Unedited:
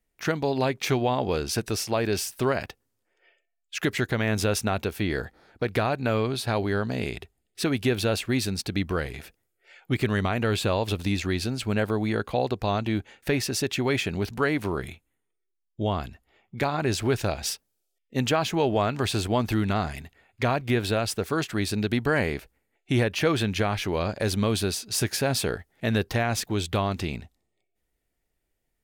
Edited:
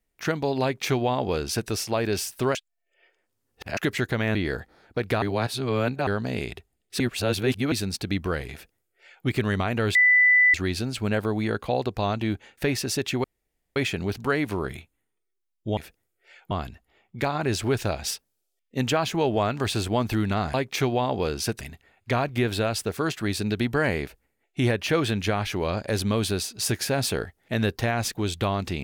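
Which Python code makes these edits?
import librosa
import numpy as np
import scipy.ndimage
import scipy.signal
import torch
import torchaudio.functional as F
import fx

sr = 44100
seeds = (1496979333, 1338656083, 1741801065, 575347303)

y = fx.edit(x, sr, fx.duplicate(start_s=0.63, length_s=1.07, to_s=19.93),
    fx.reverse_span(start_s=2.55, length_s=1.22),
    fx.cut(start_s=4.35, length_s=0.65),
    fx.reverse_span(start_s=5.87, length_s=0.85),
    fx.reverse_span(start_s=7.65, length_s=0.72),
    fx.duplicate(start_s=9.17, length_s=0.74, to_s=15.9),
    fx.bleep(start_s=10.6, length_s=0.59, hz=1990.0, db=-14.0),
    fx.insert_room_tone(at_s=13.89, length_s=0.52), tone=tone)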